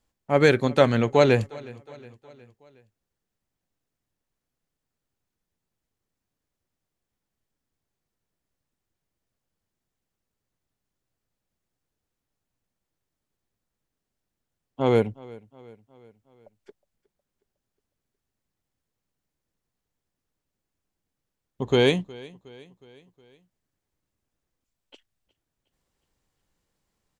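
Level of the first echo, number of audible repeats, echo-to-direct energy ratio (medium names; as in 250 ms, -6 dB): -22.0 dB, 3, -20.5 dB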